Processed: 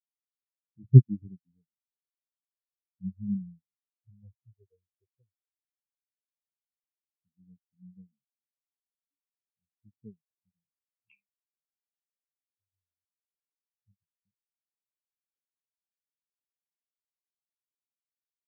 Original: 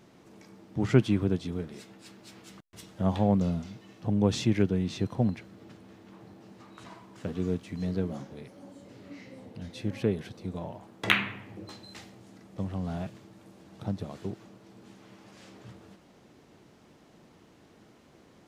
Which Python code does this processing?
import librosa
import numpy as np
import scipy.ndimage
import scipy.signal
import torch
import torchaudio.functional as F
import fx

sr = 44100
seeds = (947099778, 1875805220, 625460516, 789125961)

y = fx.phaser_stages(x, sr, stages=6, low_hz=200.0, high_hz=2200.0, hz=0.14, feedback_pct=35)
y = fx.spectral_expand(y, sr, expansion=4.0)
y = y * 10.0 ** (4.0 / 20.0)